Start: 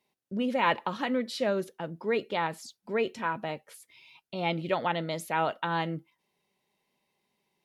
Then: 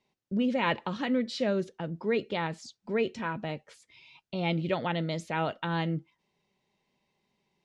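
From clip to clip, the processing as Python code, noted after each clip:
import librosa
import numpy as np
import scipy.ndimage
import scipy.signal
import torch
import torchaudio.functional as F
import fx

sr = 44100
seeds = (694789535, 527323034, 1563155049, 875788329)

y = fx.dynamic_eq(x, sr, hz=970.0, q=1.0, threshold_db=-41.0, ratio=4.0, max_db=-5)
y = scipy.signal.sosfilt(scipy.signal.butter(4, 7400.0, 'lowpass', fs=sr, output='sos'), y)
y = fx.low_shelf(y, sr, hz=160.0, db=10.0)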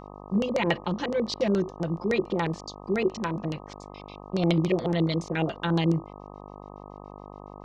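y = x + 0.9 * np.pad(x, (int(5.8 * sr / 1000.0), 0))[:len(x)]
y = fx.filter_lfo_lowpass(y, sr, shape='square', hz=7.1, low_hz=390.0, high_hz=5800.0, q=2.5)
y = fx.dmg_buzz(y, sr, base_hz=50.0, harmonics=25, level_db=-44.0, tilt_db=-1, odd_only=False)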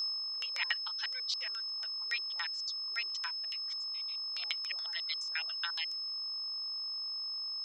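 y = x + 10.0 ** (-29.0 / 20.0) * np.sin(2.0 * np.pi * 5200.0 * np.arange(len(x)) / sr)
y = scipy.signal.sosfilt(scipy.signal.butter(4, 1400.0, 'highpass', fs=sr, output='sos'), y)
y = fx.dereverb_blind(y, sr, rt60_s=1.1)
y = y * librosa.db_to_amplitude(-2.5)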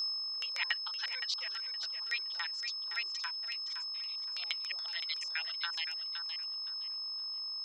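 y = fx.echo_feedback(x, sr, ms=517, feedback_pct=22, wet_db=-8.5)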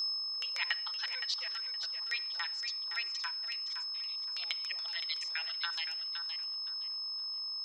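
y = fx.room_shoebox(x, sr, seeds[0], volume_m3=2800.0, walls='furnished', distance_m=0.72)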